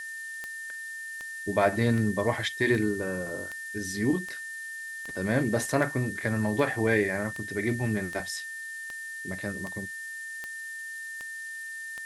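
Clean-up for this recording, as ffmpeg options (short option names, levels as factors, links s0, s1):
-af "adeclick=t=4,bandreject=f=1800:w=30,afftdn=nr=30:nf=-39"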